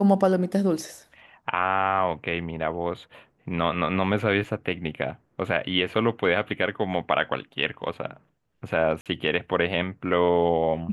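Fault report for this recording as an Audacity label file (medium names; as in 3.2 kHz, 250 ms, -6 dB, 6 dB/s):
4.440000	4.440000	dropout 2.9 ms
9.010000	9.060000	dropout 47 ms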